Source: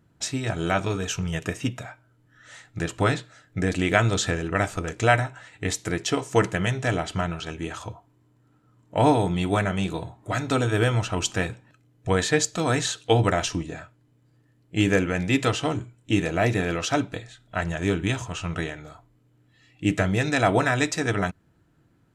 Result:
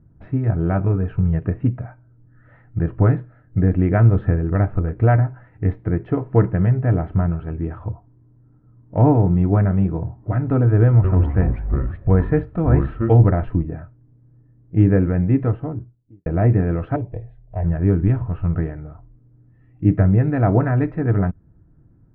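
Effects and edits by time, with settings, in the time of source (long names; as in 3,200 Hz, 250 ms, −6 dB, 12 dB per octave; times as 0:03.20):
0:10.85–0:13.30: delay with pitch and tempo change per echo 190 ms, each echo −5 semitones, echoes 3, each echo −6 dB
0:15.11–0:16.26: fade out and dull
0:16.96–0:17.64: phaser with its sweep stopped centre 580 Hz, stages 4
whole clip: inverse Chebyshev low-pass filter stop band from 7,900 Hz, stop band 70 dB; spectral tilt −4.5 dB per octave; level −3 dB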